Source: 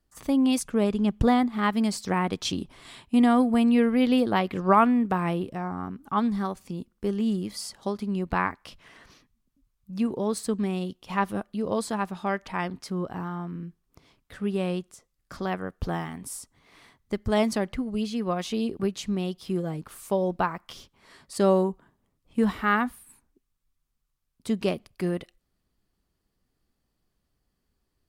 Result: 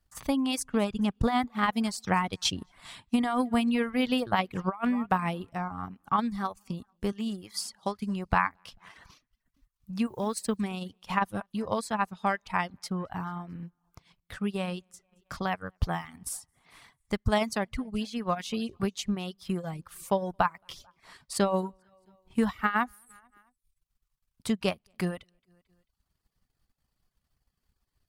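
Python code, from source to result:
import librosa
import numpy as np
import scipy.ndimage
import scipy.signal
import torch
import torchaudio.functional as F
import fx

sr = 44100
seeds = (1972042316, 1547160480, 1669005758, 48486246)

y = fx.low_shelf(x, sr, hz=130.0, db=-9.5, at=(7.12, 7.97))
y = fx.dmg_noise_colour(y, sr, seeds[0], colour='white', level_db=-64.0, at=(10.06, 10.56), fade=0.02)
y = fx.curve_eq(y, sr, hz=(130.0, 350.0, 850.0), db=(0, -9, 0))
y = fx.echo_feedback(y, sr, ms=221, feedback_pct=44, wet_db=-22.5)
y = fx.over_compress(y, sr, threshold_db=-24.0, ratio=-0.5)
y = fx.transient(y, sr, attack_db=4, sustain_db=-6)
y = fx.dereverb_blind(y, sr, rt60_s=0.52)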